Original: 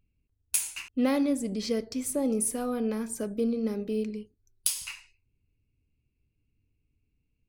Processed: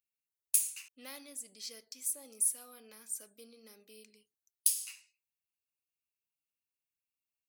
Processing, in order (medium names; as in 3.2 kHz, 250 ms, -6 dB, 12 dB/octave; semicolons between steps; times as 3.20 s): differentiator; trim -2.5 dB